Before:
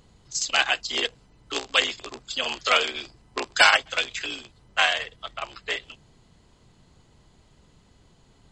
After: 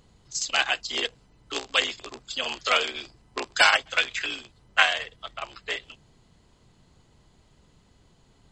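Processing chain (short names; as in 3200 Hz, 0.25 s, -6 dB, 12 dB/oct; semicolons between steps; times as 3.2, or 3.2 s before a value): 3.93–4.83 dynamic EQ 1700 Hz, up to +7 dB, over -39 dBFS, Q 0.92; gain -2 dB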